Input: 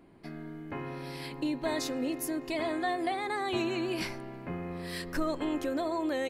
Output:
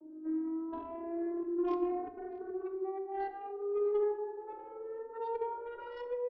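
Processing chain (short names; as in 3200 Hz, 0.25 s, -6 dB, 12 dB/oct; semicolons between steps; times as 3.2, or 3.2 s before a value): vocoder on a gliding note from D#4, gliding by +8 st; steep low-pass 1300 Hz 36 dB/oct; low shelf 260 Hz +8 dB; notches 50/100/150/200/250/300/350 Hz; negative-ratio compressor -34 dBFS, ratio -0.5; added harmonics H 2 -23 dB, 5 -23 dB, 6 -27 dB, 8 -26 dB, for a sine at -22.5 dBFS; outdoor echo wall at 110 m, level -16 dB; reverb RT60 1.4 s, pre-delay 4 ms, DRR 7 dB; endless flanger 3.1 ms -0.68 Hz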